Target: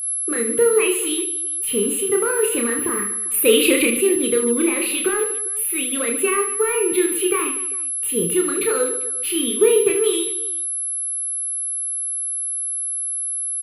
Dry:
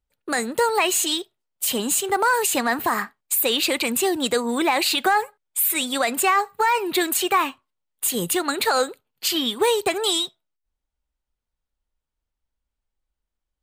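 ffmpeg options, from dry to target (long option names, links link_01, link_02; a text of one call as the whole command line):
ffmpeg -i in.wav -filter_complex "[0:a]acrossover=split=9600[link_01][link_02];[link_02]acompressor=threshold=-40dB:ratio=4:attack=1:release=60[link_03];[link_01][link_03]amix=inputs=2:normalize=0,firequalizer=gain_entry='entry(290,0);entry(440,7);entry(710,-25);entry(1200,-5);entry(1700,-8);entry(2600,-1);entry(4400,-18);entry(6900,-24);entry(10000,4)':delay=0.05:min_phase=1,asettb=1/sr,asplit=3[link_04][link_05][link_06];[link_04]atrim=end=3.344[link_07];[link_05]atrim=start=3.34:end=3.87,asetpts=PTS-STARTPTS,afade=type=in:duration=0.004:curve=qsin,afade=type=out:start_time=0.526:duration=0.004:curve=qsin,acontrast=72[link_08];[link_06]atrim=start=3.866[link_09];[link_07][link_08]acrossfade=duration=0.004:curve1=hsin:curve2=qsin[link_10];[link_10][link_09]acrossfade=duration=0.004:curve1=qsin:curve2=hsin,aeval=exprs='val(0)+0.0501*sin(2*PI*11000*n/s)':channel_layout=same,aecho=1:1:30|75|142.5|243.8|395.6:0.631|0.398|0.251|0.158|0.1" out.wav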